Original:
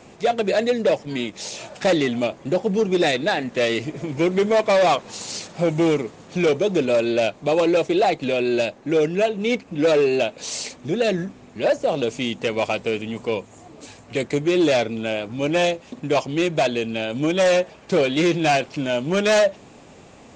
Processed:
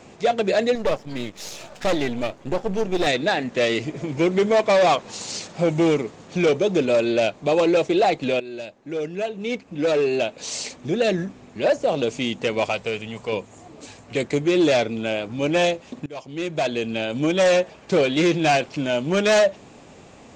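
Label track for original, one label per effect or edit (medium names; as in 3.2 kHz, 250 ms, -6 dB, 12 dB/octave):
0.750000	3.070000	partial rectifier negative side -12 dB
8.400000	10.760000	fade in, from -15.5 dB
12.690000	13.330000	peaking EQ 290 Hz -10 dB 0.87 oct
16.060000	16.920000	fade in, from -23.5 dB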